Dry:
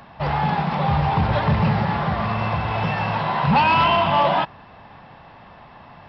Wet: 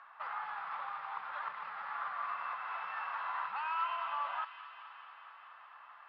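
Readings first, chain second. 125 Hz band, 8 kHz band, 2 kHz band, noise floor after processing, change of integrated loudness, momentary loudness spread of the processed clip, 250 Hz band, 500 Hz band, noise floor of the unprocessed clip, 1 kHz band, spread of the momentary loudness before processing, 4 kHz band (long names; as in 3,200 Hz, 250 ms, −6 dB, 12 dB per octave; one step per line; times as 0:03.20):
below −40 dB, can't be measured, −15.5 dB, −56 dBFS, −19.0 dB, 17 LU, below −40 dB, −30.0 dB, −46 dBFS, −17.0 dB, 7 LU, −24.0 dB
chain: downward compressor, threshold −24 dBFS, peak gain reduction 10 dB
four-pole ladder band-pass 1,400 Hz, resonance 65%
on a send: delay with a high-pass on its return 217 ms, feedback 74%, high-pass 2,100 Hz, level −7 dB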